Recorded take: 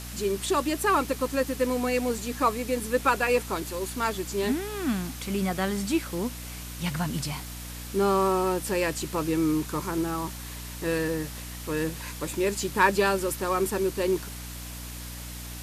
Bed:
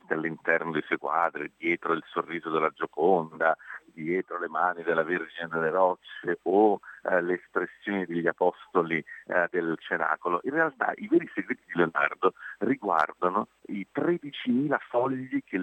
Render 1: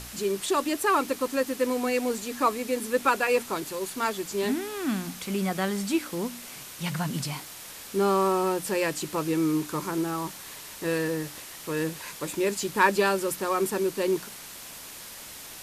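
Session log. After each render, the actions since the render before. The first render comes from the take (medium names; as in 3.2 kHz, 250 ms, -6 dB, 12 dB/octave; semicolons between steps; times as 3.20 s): de-hum 60 Hz, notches 5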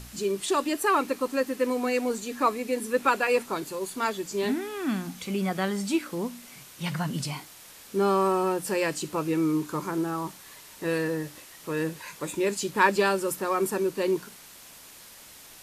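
noise print and reduce 6 dB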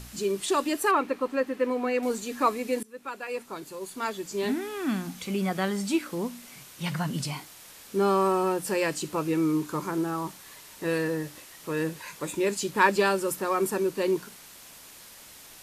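0.91–2.03 s: tone controls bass -3 dB, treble -13 dB; 2.83–4.68 s: fade in, from -23 dB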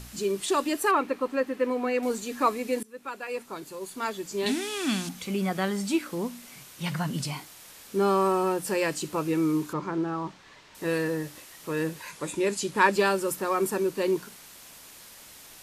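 4.46–5.09 s: high-order bell 4.9 kHz +11.5 dB 2.3 oct; 9.73–10.75 s: distance through air 150 m; 12.11–12.93 s: brick-wall FIR low-pass 12 kHz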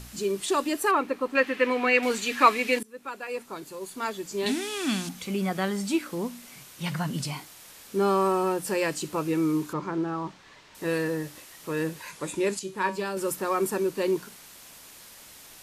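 1.35–2.79 s: peaking EQ 2.5 kHz +14 dB 2 oct; 12.59–13.17 s: feedback comb 190 Hz, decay 0.28 s, mix 70%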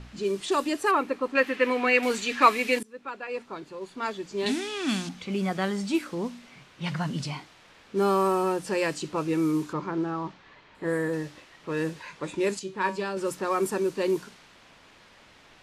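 10.60–11.11 s: spectral replace 2.3–6.7 kHz before; level-controlled noise filter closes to 2.7 kHz, open at -19.5 dBFS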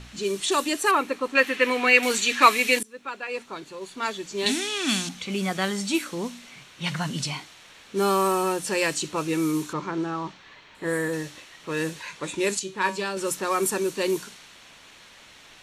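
treble shelf 2.3 kHz +11.5 dB; band-stop 4.9 kHz, Q 10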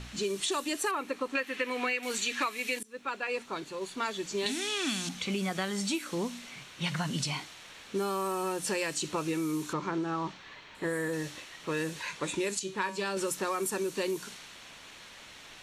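compression 16:1, threshold -28 dBFS, peak gain reduction 19 dB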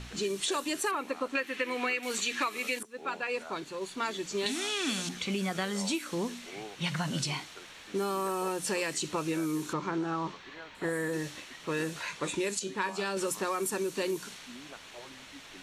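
add bed -23.5 dB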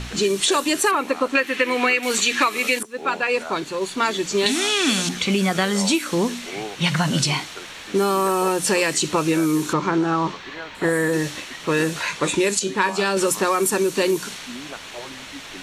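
trim +12 dB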